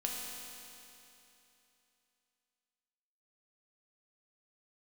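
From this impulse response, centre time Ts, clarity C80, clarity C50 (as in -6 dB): 0.139 s, 1.0 dB, 0.0 dB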